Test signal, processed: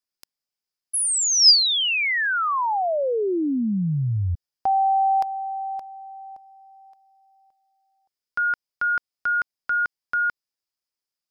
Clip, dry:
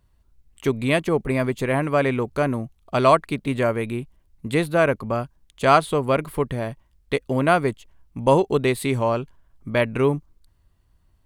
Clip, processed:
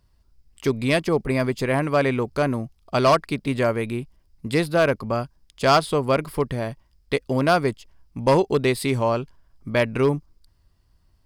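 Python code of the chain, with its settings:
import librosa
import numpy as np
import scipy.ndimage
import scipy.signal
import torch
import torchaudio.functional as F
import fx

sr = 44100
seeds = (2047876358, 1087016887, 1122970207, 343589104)

y = np.clip(x, -10.0 ** (-10.5 / 20.0), 10.0 ** (-10.5 / 20.0))
y = fx.peak_eq(y, sr, hz=5000.0, db=13.0, octaves=0.26)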